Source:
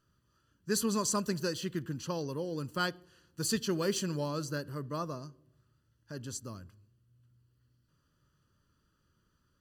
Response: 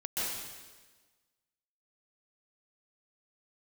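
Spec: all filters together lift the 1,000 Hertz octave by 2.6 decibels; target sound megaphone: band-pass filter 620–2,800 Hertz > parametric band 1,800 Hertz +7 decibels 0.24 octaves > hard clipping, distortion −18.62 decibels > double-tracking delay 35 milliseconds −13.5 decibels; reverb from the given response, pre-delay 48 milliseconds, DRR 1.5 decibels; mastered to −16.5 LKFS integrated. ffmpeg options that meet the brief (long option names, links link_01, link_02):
-filter_complex "[0:a]equalizer=frequency=1000:width_type=o:gain=3.5,asplit=2[link_01][link_02];[1:a]atrim=start_sample=2205,adelay=48[link_03];[link_02][link_03]afir=irnorm=-1:irlink=0,volume=-7.5dB[link_04];[link_01][link_04]amix=inputs=2:normalize=0,highpass=620,lowpass=2800,equalizer=frequency=1800:width_type=o:width=0.24:gain=7,asoftclip=type=hard:threshold=-26.5dB,asplit=2[link_05][link_06];[link_06]adelay=35,volume=-13.5dB[link_07];[link_05][link_07]amix=inputs=2:normalize=0,volume=21dB"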